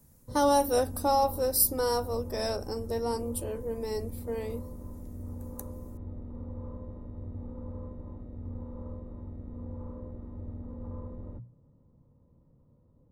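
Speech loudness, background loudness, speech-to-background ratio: -29.0 LUFS, -42.5 LUFS, 13.5 dB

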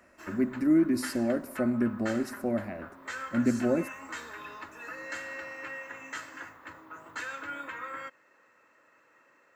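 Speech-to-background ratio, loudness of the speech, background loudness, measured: 12.0 dB, -29.0 LUFS, -41.0 LUFS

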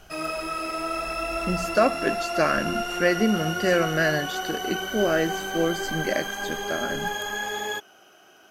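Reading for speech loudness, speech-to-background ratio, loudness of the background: -26.0 LUFS, 3.0 dB, -29.0 LUFS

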